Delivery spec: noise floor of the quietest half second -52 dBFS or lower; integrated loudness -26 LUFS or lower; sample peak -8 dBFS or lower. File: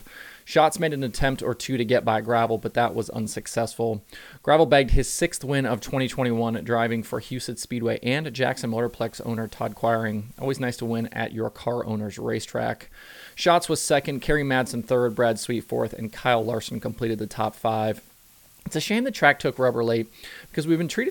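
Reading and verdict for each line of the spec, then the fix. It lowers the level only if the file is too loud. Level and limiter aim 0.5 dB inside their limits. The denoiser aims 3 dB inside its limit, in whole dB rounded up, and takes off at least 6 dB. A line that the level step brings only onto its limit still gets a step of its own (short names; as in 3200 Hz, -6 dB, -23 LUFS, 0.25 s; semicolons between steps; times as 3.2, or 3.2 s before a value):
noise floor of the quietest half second -54 dBFS: OK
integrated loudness -24.5 LUFS: fail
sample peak -2.5 dBFS: fail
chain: gain -2 dB; limiter -8.5 dBFS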